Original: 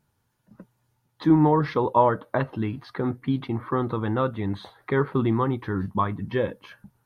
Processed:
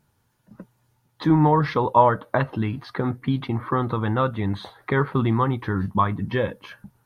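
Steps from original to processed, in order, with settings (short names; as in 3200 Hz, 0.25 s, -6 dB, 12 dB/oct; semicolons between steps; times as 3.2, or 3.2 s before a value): dynamic EQ 350 Hz, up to -6 dB, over -32 dBFS, Q 1.1; gain +4.5 dB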